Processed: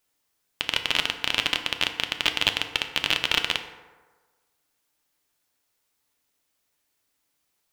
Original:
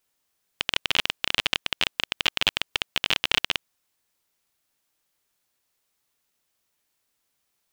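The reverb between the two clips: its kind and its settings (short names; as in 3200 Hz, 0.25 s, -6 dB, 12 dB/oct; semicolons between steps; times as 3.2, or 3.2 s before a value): FDN reverb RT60 1.4 s, low-frequency decay 0.8×, high-frequency decay 0.45×, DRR 6 dB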